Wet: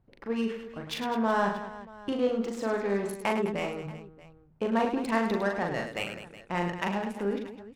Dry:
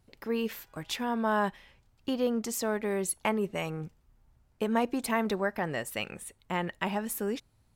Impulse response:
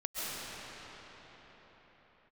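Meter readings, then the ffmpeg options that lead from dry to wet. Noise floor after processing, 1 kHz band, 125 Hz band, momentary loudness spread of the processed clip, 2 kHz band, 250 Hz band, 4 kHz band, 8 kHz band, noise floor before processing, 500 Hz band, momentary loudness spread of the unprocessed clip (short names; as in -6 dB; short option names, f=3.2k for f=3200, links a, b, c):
-58 dBFS, +2.0 dB, +1.5 dB, 11 LU, +1.5 dB, +1.5 dB, -0.5 dB, -10.5 dB, -67 dBFS, +2.0 dB, 9 LU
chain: -af "bandreject=f=78.96:t=h:w=4,bandreject=f=157.92:t=h:w=4,bandreject=f=236.88:t=h:w=4,adynamicsmooth=sensitivity=6:basefreq=1.6k,aecho=1:1:40|104|206.4|370.2|632.4:0.631|0.398|0.251|0.158|0.1"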